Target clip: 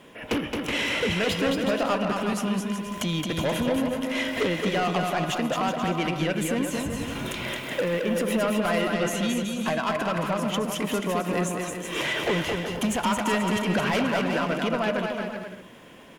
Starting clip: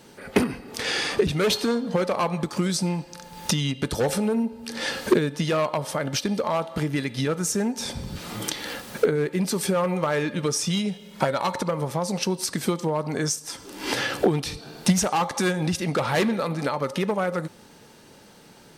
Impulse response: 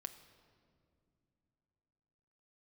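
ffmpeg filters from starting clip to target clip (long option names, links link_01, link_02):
-filter_complex "[0:a]highshelf=frequency=3200:width_type=q:width=3:gain=-6.5,asoftclip=type=tanh:threshold=-21dB,asetrate=51156,aresample=44100,asplit=2[link_01][link_02];[link_02]aecho=0:1:220|374|481.8|557.3|610.1:0.631|0.398|0.251|0.158|0.1[link_03];[link_01][link_03]amix=inputs=2:normalize=0"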